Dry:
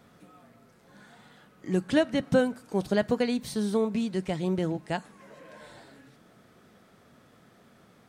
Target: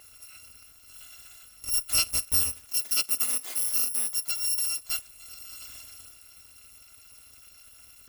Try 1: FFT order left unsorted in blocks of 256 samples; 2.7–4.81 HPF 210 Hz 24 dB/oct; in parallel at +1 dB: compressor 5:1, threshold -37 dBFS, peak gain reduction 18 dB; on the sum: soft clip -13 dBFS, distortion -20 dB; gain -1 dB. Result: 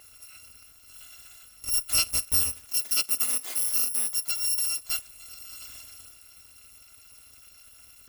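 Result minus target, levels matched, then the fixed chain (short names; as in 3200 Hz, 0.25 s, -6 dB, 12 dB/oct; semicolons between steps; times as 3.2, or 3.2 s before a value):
compressor: peak gain reduction -5 dB
FFT order left unsorted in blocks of 256 samples; 2.7–4.81 HPF 210 Hz 24 dB/oct; in parallel at +1 dB: compressor 5:1, threshold -43.5 dBFS, peak gain reduction 23 dB; on the sum: soft clip -13 dBFS, distortion -21 dB; gain -1 dB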